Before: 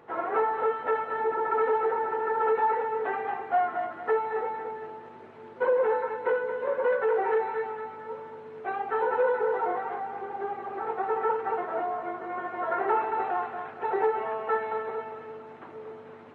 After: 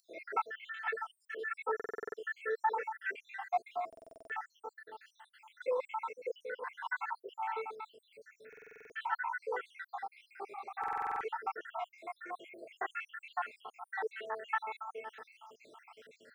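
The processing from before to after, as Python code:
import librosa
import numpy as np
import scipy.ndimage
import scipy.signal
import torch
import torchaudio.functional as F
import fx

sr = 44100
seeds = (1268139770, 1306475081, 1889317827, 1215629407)

y = fx.spec_dropout(x, sr, seeds[0], share_pct=76)
y = np.diff(y, prepend=0.0)
y = fx.buffer_glitch(y, sr, at_s=(1.75, 3.88, 8.48, 10.79), block=2048, repeats=8)
y = y * 10.0 ** (14.0 / 20.0)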